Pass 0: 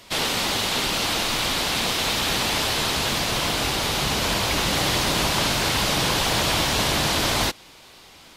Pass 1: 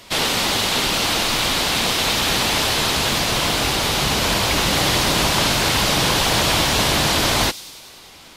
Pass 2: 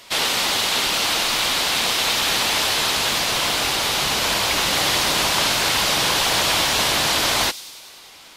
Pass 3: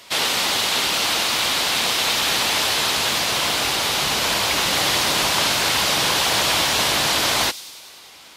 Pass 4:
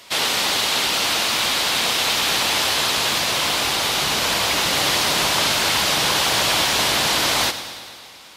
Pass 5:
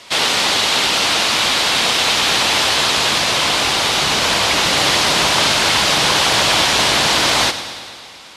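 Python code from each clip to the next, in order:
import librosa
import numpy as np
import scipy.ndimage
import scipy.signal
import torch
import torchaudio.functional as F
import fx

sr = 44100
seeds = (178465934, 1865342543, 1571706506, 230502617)

y1 = fx.echo_wet_highpass(x, sr, ms=99, feedback_pct=70, hz=4600.0, wet_db=-13)
y1 = F.gain(torch.from_numpy(y1), 4.0).numpy()
y2 = fx.low_shelf(y1, sr, hz=360.0, db=-11.0)
y3 = scipy.signal.sosfilt(scipy.signal.butter(2, 54.0, 'highpass', fs=sr, output='sos'), y2)
y4 = fx.echo_bbd(y3, sr, ms=112, stages=4096, feedback_pct=68, wet_db=-13.0)
y5 = scipy.signal.sosfilt(scipy.signal.bessel(8, 8800.0, 'lowpass', norm='mag', fs=sr, output='sos'), y4)
y5 = F.gain(torch.from_numpy(y5), 5.0).numpy()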